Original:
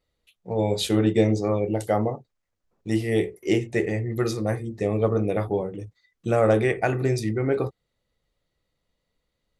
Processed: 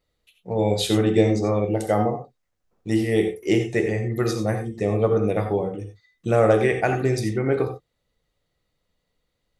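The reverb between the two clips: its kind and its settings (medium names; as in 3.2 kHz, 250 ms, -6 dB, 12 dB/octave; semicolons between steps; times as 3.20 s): gated-style reverb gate 110 ms rising, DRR 6.5 dB; trim +1.5 dB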